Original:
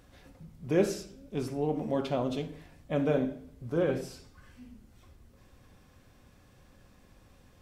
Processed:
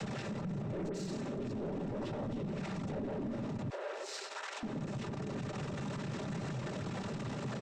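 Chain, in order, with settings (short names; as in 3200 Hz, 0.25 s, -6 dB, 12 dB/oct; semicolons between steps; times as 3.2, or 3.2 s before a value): zero-crossing step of -30.5 dBFS; 0.88–1.51 dispersion highs, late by 68 ms, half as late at 2500 Hz; noise vocoder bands 12; comb 5.1 ms, depth 34%; tube stage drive 25 dB, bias 0.25; compressor 5:1, threshold -38 dBFS, peak gain reduction 10 dB; 3.7–4.63 Bessel high-pass 790 Hz, order 8; tilt -2.5 dB/oct; limiter -38 dBFS, peak gain reduction 14 dB; gain +6 dB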